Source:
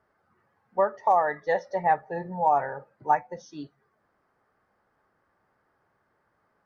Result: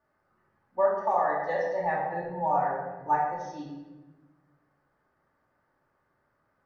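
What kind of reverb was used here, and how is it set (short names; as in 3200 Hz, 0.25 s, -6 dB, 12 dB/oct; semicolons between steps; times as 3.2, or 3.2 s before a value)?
shoebox room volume 710 m³, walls mixed, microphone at 2.5 m; gain -8 dB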